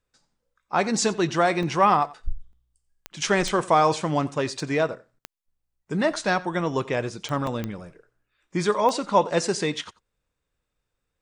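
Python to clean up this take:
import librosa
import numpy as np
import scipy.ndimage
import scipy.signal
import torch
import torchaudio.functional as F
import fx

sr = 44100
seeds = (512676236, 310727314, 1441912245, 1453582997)

y = fx.fix_declick_ar(x, sr, threshold=10.0)
y = fx.fix_interpolate(y, sr, at_s=(1.63, 2.53, 4.6, 7.47), length_ms=1.8)
y = fx.fix_echo_inverse(y, sr, delay_ms=89, level_db=-20.5)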